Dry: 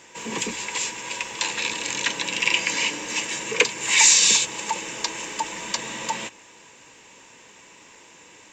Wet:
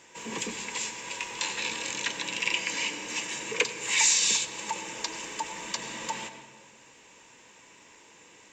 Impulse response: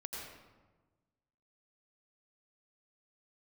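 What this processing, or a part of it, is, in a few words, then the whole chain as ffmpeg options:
compressed reverb return: -filter_complex "[0:a]asplit=2[s0][s1];[1:a]atrim=start_sample=2205[s2];[s1][s2]afir=irnorm=-1:irlink=0,acompressor=threshold=0.0447:ratio=6,volume=0.668[s3];[s0][s3]amix=inputs=2:normalize=0,asettb=1/sr,asplit=3[s4][s5][s6];[s4]atrim=end=1.194[s7];[s5]atrim=start=1.19:end=1.9,asetpts=PTS-STARTPTS,afade=t=in:d=0.004:c=qsin,afade=t=out:st=0.706:d=0.004:c=qsin,asplit=2[s8][s9];[s9]adelay=22,volume=0.473[s10];[s8][s10]amix=inputs=2:normalize=0,atrim=end_sample=31311[s11];[s6]atrim=start=1.896[s12];[s7][s11]acrossfade=d=0.004:c1=hsin:c2=qsin[s13];[s13][s12]acrossfade=d=0.004:c1=qsin:c2=hsin,volume=0.376"

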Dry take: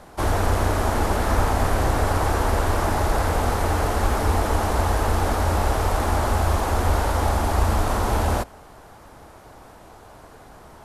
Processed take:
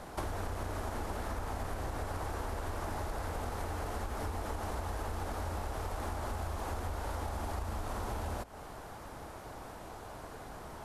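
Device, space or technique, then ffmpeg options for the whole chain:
serial compression, peaks first: -af "acompressor=threshold=0.0355:ratio=6,acompressor=threshold=0.0158:ratio=2,volume=0.891"

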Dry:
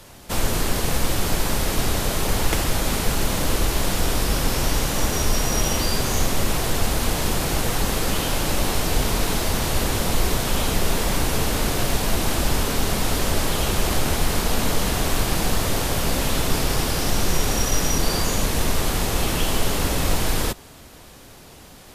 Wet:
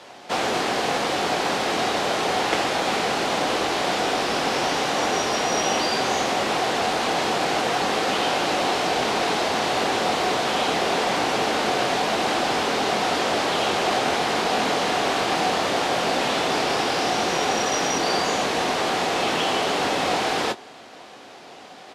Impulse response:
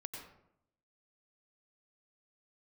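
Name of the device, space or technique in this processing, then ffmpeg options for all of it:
intercom: -filter_complex "[0:a]highpass=320,lowpass=4400,equalizer=f=750:t=o:w=0.21:g=7.5,asoftclip=type=tanh:threshold=0.224,asplit=2[s0][s1];[s1]adelay=23,volume=0.299[s2];[s0][s2]amix=inputs=2:normalize=0,volume=1.58"

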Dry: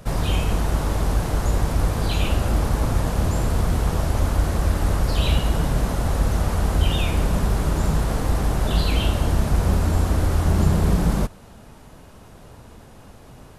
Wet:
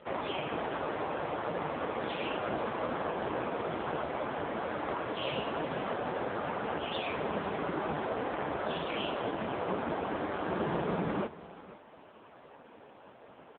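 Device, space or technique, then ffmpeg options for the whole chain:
satellite phone: -af "highpass=340,lowpass=3100,aecho=1:1:495:0.141" -ar 8000 -c:a libopencore_amrnb -b:a 5150

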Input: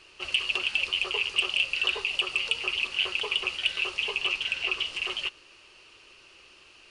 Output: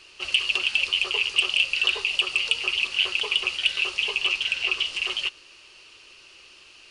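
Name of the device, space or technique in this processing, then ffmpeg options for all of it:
presence and air boost: -af "equalizer=f=4600:t=o:w=2:g=5.5,highshelf=f=9400:g=5.5"

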